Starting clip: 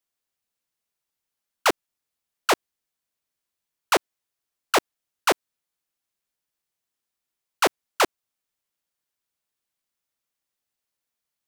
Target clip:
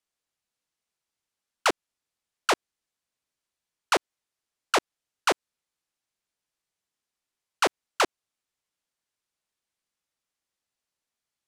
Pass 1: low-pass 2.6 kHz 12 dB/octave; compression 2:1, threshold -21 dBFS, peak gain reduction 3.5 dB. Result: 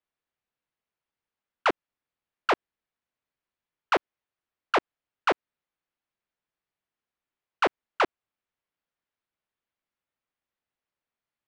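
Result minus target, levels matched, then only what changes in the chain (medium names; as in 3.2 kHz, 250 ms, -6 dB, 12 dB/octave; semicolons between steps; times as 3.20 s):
8 kHz band -16.0 dB
change: low-pass 9.7 kHz 12 dB/octave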